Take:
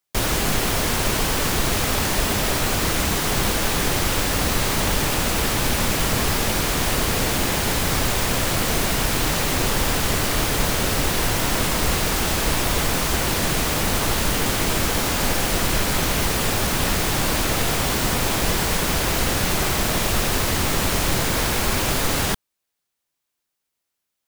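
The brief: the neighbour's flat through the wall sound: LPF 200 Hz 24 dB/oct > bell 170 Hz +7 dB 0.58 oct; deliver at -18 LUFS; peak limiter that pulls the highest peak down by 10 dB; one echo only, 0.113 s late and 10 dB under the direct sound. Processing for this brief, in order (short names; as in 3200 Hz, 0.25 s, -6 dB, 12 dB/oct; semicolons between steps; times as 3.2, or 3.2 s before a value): limiter -16 dBFS; LPF 200 Hz 24 dB/oct; bell 170 Hz +7 dB 0.58 oct; echo 0.113 s -10 dB; gain +13.5 dB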